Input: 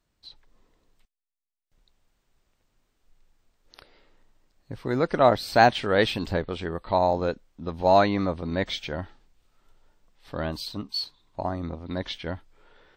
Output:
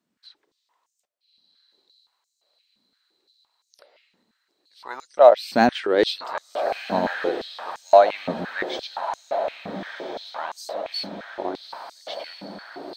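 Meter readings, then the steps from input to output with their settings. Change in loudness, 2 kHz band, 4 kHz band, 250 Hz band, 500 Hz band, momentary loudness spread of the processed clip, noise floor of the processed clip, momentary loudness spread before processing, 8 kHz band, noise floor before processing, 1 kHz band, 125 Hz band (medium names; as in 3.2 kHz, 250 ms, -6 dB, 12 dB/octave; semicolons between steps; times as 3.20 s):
+2.5 dB, +0.5 dB, +0.5 dB, -0.5 dB, +4.5 dB, 20 LU, -77 dBFS, 17 LU, no reading, -77 dBFS, +1.5 dB, -11.0 dB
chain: Chebyshev shaper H 3 -27 dB, 8 -38 dB, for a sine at -6 dBFS; on a send: echo that smears into a reverb 1322 ms, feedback 62%, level -8 dB; on the sum: step-sequenced high-pass 5.8 Hz 220–6600 Hz; trim -2 dB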